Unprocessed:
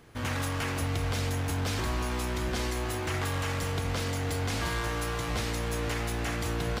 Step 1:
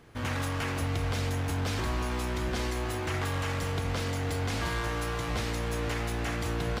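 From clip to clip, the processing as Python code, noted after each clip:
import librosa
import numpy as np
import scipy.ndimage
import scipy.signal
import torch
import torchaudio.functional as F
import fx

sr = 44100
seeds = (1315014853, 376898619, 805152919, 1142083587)

y = fx.high_shelf(x, sr, hz=5400.0, db=-4.5)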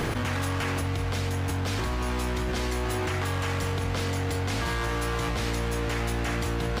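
y = fx.env_flatten(x, sr, amount_pct=100)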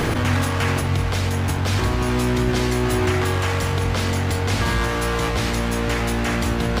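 y = fx.echo_wet_lowpass(x, sr, ms=73, feedback_pct=67, hz=440.0, wet_db=-5.5)
y = F.gain(torch.from_numpy(y), 7.0).numpy()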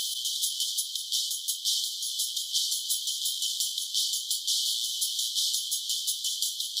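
y = fx.brickwall_highpass(x, sr, low_hz=3000.0)
y = F.gain(torch.from_numpy(y), 5.0).numpy()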